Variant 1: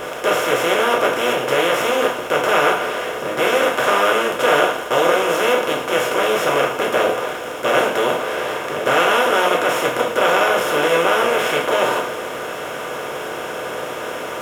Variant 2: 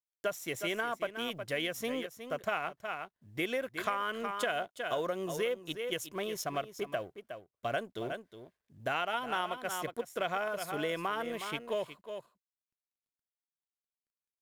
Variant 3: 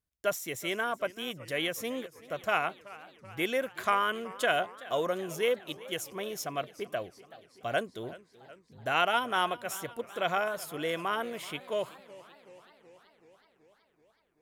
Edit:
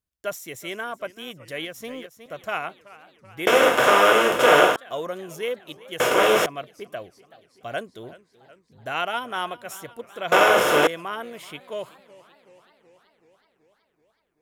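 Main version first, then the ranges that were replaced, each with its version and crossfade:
3
1.65–2.26 s: from 2
3.47–4.76 s: from 1
6.00–6.46 s: from 1
10.32–10.87 s: from 1

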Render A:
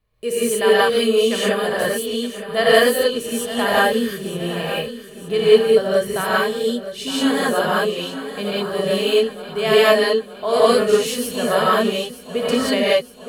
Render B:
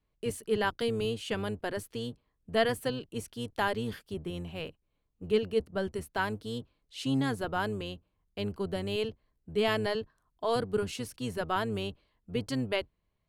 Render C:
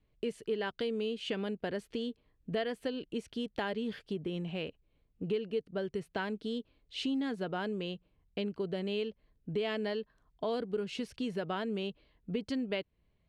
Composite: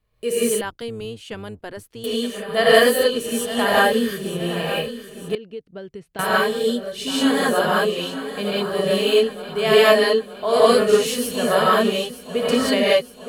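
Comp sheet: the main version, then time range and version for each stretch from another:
A
0.61–2.04 s: from B
5.35–6.19 s: from C

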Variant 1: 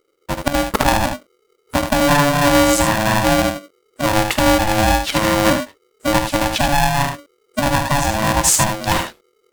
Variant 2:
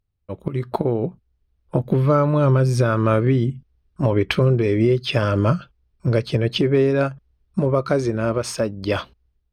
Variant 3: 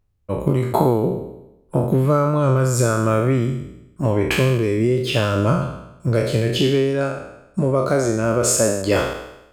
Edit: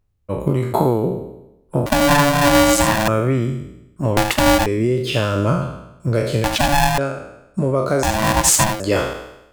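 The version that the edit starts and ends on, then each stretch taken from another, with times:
3
1.86–3.08 s: from 1
4.17–4.66 s: from 1
6.44–6.98 s: from 1
8.03–8.80 s: from 1
not used: 2

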